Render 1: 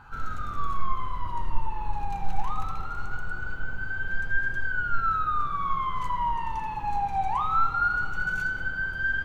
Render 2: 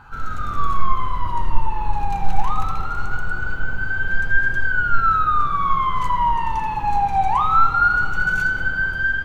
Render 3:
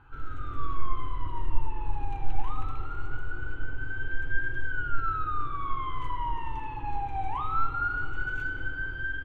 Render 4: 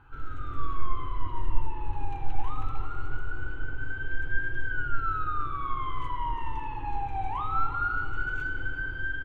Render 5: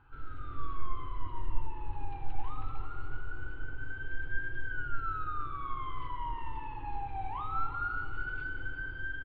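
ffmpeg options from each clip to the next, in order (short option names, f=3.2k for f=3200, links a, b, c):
-af "dynaudnorm=f=110:g=7:m=4dB,volume=4.5dB"
-af "firequalizer=gain_entry='entry(130,0);entry(190,-19);entry(280,5);entry(630,-8);entry(3100,-3);entry(4600,-16)':delay=0.05:min_phase=1,volume=-7dB"
-filter_complex "[0:a]asplit=2[a][b];[b]adelay=367.3,volume=-10dB,highshelf=f=4k:g=-8.27[c];[a][c]amix=inputs=2:normalize=0"
-af "aresample=11025,aresample=44100,volume=-6dB"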